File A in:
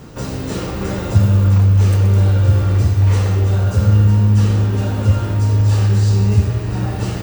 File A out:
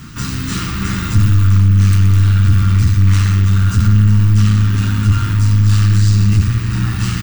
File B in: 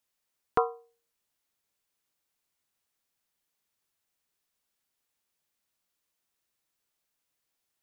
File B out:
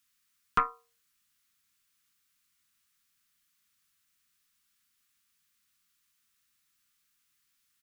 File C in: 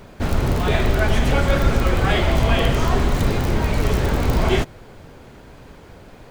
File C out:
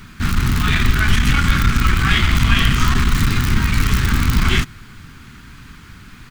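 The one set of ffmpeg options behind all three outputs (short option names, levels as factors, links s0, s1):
-af "aeval=exprs='(tanh(3.98*val(0)+0.45)-tanh(0.45))/3.98':c=same,firequalizer=gain_entry='entry(230,0);entry(540,-25);entry(1200,3)':delay=0.05:min_phase=1,volume=2"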